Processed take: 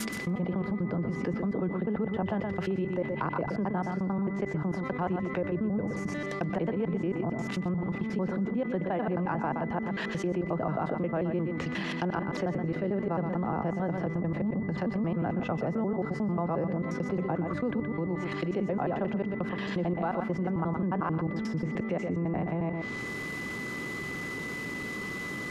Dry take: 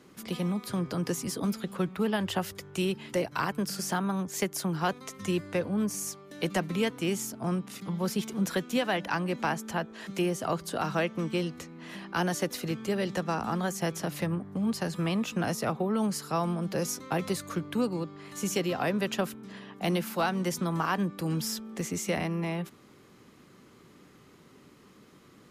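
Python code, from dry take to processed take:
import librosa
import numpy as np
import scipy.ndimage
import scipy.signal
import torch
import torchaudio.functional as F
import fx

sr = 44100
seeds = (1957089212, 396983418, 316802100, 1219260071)

y = fx.block_reorder(x, sr, ms=89.0, group=3)
y = fx.env_lowpass_down(y, sr, base_hz=950.0, full_db=-30.0)
y = y + 10.0 ** (-55.0 / 20.0) * np.sin(2.0 * np.pi * 2000.0 * np.arange(len(y)) / sr)
y = y + 10.0 ** (-11.0 / 20.0) * np.pad(y, (int(122 * sr / 1000.0), 0))[:len(y)]
y = fx.env_flatten(y, sr, amount_pct=70)
y = y * librosa.db_to_amplitude(-3.5)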